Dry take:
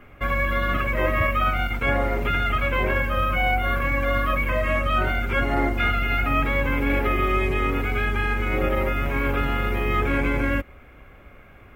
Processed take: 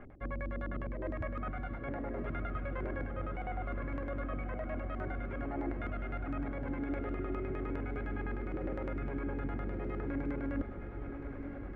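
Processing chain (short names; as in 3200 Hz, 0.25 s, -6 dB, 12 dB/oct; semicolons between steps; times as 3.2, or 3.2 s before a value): band shelf 1800 Hz -10.5 dB; reverse; compressor 10:1, threshold -35 dBFS, peak gain reduction 17 dB; reverse; LFO low-pass square 9.8 Hz 310–1700 Hz; diffused feedback echo 1.126 s, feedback 40%, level -7.5 dB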